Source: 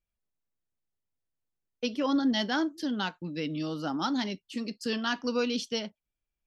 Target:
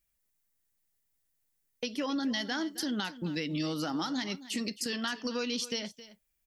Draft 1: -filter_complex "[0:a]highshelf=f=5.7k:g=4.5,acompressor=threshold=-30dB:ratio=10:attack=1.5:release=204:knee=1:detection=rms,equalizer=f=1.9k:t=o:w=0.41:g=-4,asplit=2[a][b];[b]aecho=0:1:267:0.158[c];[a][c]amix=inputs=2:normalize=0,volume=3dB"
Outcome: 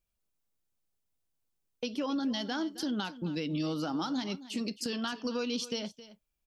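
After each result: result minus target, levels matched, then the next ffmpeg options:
2000 Hz band -4.0 dB; 8000 Hz band -3.5 dB
-filter_complex "[0:a]highshelf=f=5.7k:g=4.5,acompressor=threshold=-30dB:ratio=10:attack=1.5:release=204:knee=1:detection=rms,equalizer=f=1.9k:t=o:w=0.41:g=6.5,asplit=2[a][b];[b]aecho=0:1:267:0.158[c];[a][c]amix=inputs=2:normalize=0,volume=3dB"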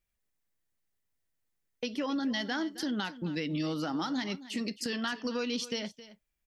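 8000 Hz band -4.0 dB
-filter_complex "[0:a]highshelf=f=5.7k:g=15.5,acompressor=threshold=-30dB:ratio=10:attack=1.5:release=204:knee=1:detection=rms,equalizer=f=1.9k:t=o:w=0.41:g=6.5,asplit=2[a][b];[b]aecho=0:1:267:0.158[c];[a][c]amix=inputs=2:normalize=0,volume=3dB"

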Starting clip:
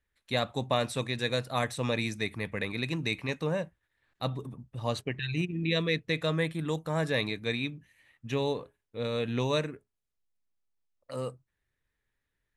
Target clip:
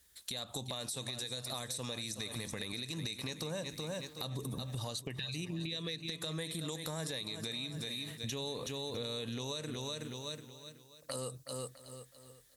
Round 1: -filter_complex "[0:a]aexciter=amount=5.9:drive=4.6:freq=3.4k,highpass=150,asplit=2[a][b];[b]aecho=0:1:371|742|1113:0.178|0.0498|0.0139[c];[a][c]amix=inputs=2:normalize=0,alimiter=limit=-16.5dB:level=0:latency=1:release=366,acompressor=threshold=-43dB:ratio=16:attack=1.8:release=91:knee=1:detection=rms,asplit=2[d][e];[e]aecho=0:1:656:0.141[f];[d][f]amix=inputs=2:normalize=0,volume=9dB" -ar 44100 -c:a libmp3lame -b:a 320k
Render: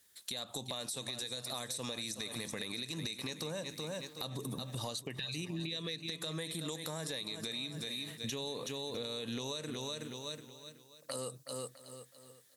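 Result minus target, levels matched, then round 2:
125 Hz band -2.5 dB
-filter_complex "[0:a]aexciter=amount=5.9:drive=4.6:freq=3.4k,highpass=40,asplit=2[a][b];[b]aecho=0:1:371|742|1113:0.178|0.0498|0.0139[c];[a][c]amix=inputs=2:normalize=0,alimiter=limit=-16.5dB:level=0:latency=1:release=366,acompressor=threshold=-43dB:ratio=16:attack=1.8:release=91:knee=1:detection=rms,asplit=2[d][e];[e]aecho=0:1:656:0.141[f];[d][f]amix=inputs=2:normalize=0,volume=9dB" -ar 44100 -c:a libmp3lame -b:a 320k

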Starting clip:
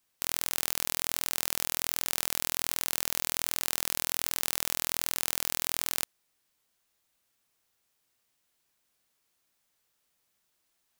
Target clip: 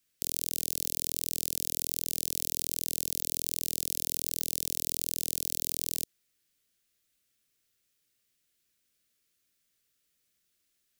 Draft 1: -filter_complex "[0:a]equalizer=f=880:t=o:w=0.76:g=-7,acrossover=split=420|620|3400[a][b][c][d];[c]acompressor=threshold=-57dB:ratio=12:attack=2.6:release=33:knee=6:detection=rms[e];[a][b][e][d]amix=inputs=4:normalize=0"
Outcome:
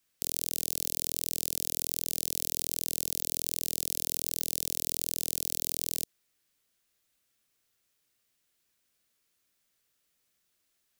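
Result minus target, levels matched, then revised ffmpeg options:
1000 Hz band +7.0 dB
-filter_complex "[0:a]equalizer=f=880:t=o:w=0.76:g=-18,acrossover=split=420|620|3400[a][b][c][d];[c]acompressor=threshold=-57dB:ratio=12:attack=2.6:release=33:knee=6:detection=rms[e];[a][b][e][d]amix=inputs=4:normalize=0"

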